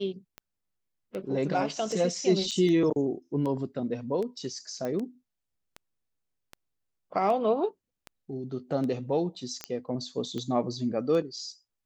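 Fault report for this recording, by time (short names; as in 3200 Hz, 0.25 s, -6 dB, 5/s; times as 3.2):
tick 78 rpm -24 dBFS
2.51–2.52 gap 7 ms
4.85 pop -21 dBFS
9.64 pop -16 dBFS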